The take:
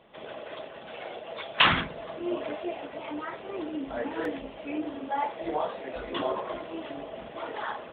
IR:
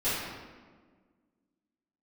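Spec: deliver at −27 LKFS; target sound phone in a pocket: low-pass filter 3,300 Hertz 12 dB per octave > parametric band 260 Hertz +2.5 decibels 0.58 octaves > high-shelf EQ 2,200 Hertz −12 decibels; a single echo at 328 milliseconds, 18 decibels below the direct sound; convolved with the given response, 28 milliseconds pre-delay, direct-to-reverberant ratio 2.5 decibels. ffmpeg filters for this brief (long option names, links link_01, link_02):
-filter_complex "[0:a]aecho=1:1:328:0.126,asplit=2[link_01][link_02];[1:a]atrim=start_sample=2205,adelay=28[link_03];[link_02][link_03]afir=irnorm=-1:irlink=0,volume=-13dB[link_04];[link_01][link_04]amix=inputs=2:normalize=0,lowpass=3300,equalizer=frequency=260:width_type=o:width=0.58:gain=2.5,highshelf=frequency=2200:gain=-12,volume=5dB"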